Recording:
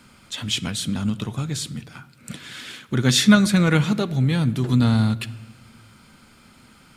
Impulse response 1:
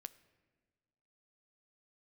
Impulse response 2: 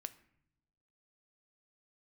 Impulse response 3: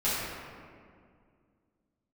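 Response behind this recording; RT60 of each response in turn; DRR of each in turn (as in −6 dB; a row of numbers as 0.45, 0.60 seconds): 1; 1.6 s, non-exponential decay, 2.1 s; 14.0, 12.0, −12.0 decibels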